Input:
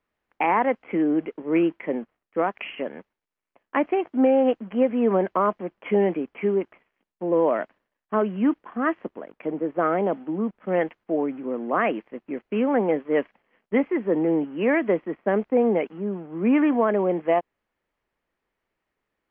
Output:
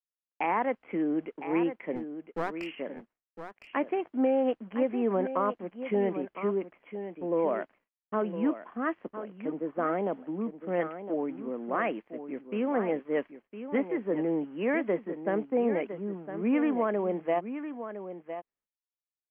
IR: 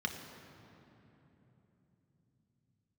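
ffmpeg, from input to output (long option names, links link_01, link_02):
-filter_complex "[0:a]agate=range=-33dB:threshold=-54dB:ratio=16:detection=peak,asplit=3[link_01][link_02][link_03];[link_01]afade=type=out:start_time=1.95:duration=0.02[link_04];[link_02]aeval=exprs='clip(val(0),-1,0.0282)':channel_layout=same,afade=type=in:start_time=1.95:duration=0.02,afade=type=out:start_time=2.66:duration=0.02[link_05];[link_03]afade=type=in:start_time=2.66:duration=0.02[link_06];[link_04][link_05][link_06]amix=inputs=3:normalize=0,aecho=1:1:1009:0.299,volume=-7dB"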